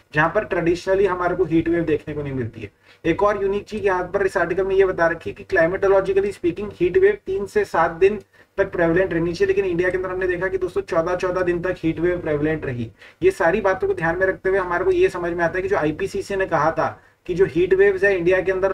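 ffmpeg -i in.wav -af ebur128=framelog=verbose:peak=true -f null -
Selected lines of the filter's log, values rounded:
Integrated loudness:
  I:         -20.3 LUFS
  Threshold: -30.5 LUFS
Loudness range:
  LRA:         2.4 LU
  Threshold: -40.7 LUFS
  LRA low:   -22.0 LUFS
  LRA high:  -19.6 LUFS
True peak:
  Peak:       -5.8 dBFS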